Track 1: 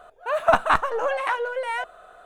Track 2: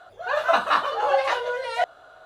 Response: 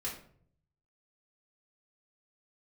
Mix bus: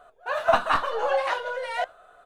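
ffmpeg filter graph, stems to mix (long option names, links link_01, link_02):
-filter_complex "[0:a]flanger=delay=6.8:depth=5.2:regen=60:speed=1.4:shape=sinusoidal,volume=-1dB,asplit=2[link_01][link_02];[1:a]adelay=1.1,volume=-5dB[link_03];[link_02]apad=whole_len=99663[link_04];[link_03][link_04]sidechaingate=range=-33dB:threshold=-42dB:ratio=16:detection=peak[link_05];[link_01][link_05]amix=inputs=2:normalize=0"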